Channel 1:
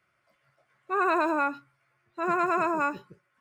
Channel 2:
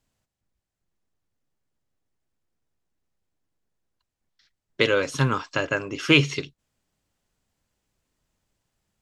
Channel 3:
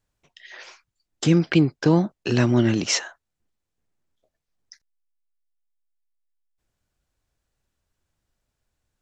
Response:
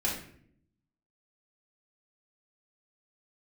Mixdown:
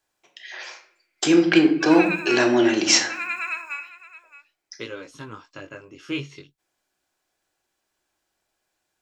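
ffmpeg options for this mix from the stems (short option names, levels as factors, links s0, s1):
-filter_complex "[0:a]highpass=f=2300:t=q:w=4.4,dynaudnorm=f=180:g=9:m=2.51,adelay=900,volume=0.376,asplit=3[s0][s1][s2];[s1]volume=0.224[s3];[s2]volume=0.178[s4];[1:a]flanger=delay=17:depth=5.5:speed=0.41,volume=0.266[s5];[2:a]asoftclip=type=hard:threshold=0.422,highpass=480,volume=1.19,asplit=2[s6][s7];[s7]volume=0.473[s8];[3:a]atrim=start_sample=2205[s9];[s3][s8]amix=inputs=2:normalize=0[s10];[s10][s9]afir=irnorm=-1:irlink=0[s11];[s4]aecho=0:1:620:1[s12];[s0][s5][s6][s11][s12]amix=inputs=5:normalize=0,equalizer=f=320:t=o:w=0.31:g=6"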